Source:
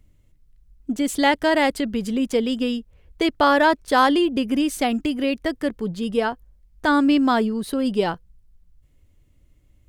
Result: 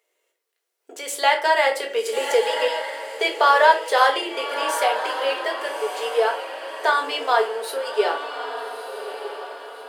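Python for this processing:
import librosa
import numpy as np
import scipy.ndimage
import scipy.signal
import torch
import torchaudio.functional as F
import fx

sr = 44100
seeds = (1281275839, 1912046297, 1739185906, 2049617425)

y = fx.recorder_agc(x, sr, target_db=-15.0, rise_db_per_s=6.2, max_gain_db=30)
y = scipy.signal.sosfilt(scipy.signal.cheby1(6, 1.0, 390.0, 'highpass', fs=sr, output='sos'), y)
y = fx.echo_diffused(y, sr, ms=1214, feedback_pct=43, wet_db=-9.0)
y = fx.room_shoebox(y, sr, seeds[0], volume_m3=270.0, walls='furnished', distance_m=1.7)
y = fx.band_squash(y, sr, depth_pct=70, at=(1.45, 2.68))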